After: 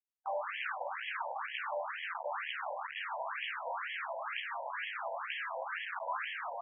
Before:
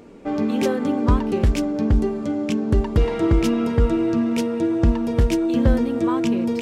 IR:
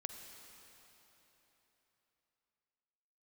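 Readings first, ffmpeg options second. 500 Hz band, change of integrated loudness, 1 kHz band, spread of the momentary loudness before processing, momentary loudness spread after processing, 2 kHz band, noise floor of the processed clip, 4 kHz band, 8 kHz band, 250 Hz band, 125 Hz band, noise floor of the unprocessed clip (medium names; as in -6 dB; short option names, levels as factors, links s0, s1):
-19.0 dB, -17.5 dB, -5.5 dB, 4 LU, 2 LU, -0.5 dB, -45 dBFS, -7.0 dB, under -40 dB, under -40 dB, under -40 dB, -28 dBFS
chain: -filter_complex "[0:a]bandreject=f=50:t=h:w=6,bandreject=f=100:t=h:w=6,bandreject=f=150:t=h:w=6,acrossover=split=350|1700[s0][s1][s2];[s1]aeval=exprs='0.0668*(abs(mod(val(0)/0.0668+3,4)-2)-1)':c=same[s3];[s0][s3][s2]amix=inputs=3:normalize=0,acrusher=bits=3:mix=0:aa=0.000001,afftfilt=real='re*between(b*sr/1024,700*pow(2400/700,0.5+0.5*sin(2*PI*2.1*pts/sr))/1.41,700*pow(2400/700,0.5+0.5*sin(2*PI*2.1*pts/sr))*1.41)':imag='im*between(b*sr/1024,700*pow(2400/700,0.5+0.5*sin(2*PI*2.1*pts/sr))/1.41,700*pow(2400/700,0.5+0.5*sin(2*PI*2.1*pts/sr))*1.41)':win_size=1024:overlap=0.75,volume=0.473"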